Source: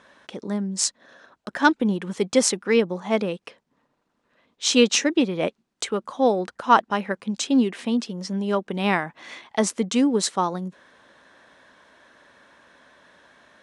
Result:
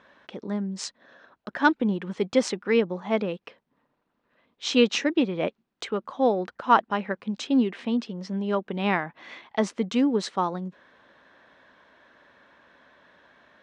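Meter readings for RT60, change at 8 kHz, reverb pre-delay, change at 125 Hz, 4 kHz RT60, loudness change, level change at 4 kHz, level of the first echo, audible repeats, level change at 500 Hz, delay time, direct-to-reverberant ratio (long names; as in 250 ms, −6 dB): no reverb audible, −13.5 dB, no reverb audible, −2.5 dB, no reverb audible, −3.0 dB, −5.5 dB, no echo audible, no echo audible, −2.5 dB, no echo audible, no reverb audible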